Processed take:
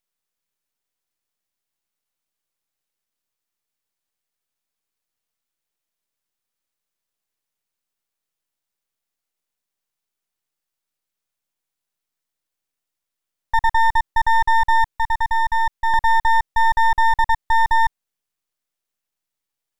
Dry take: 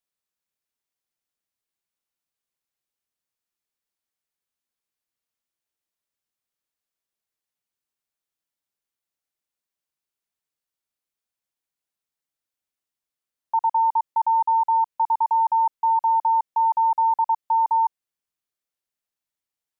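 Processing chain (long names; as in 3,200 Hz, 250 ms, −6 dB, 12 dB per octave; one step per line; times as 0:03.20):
0:14.97–0:15.94: high-pass filter 900 Hz 12 dB per octave
half-wave rectification
level +8 dB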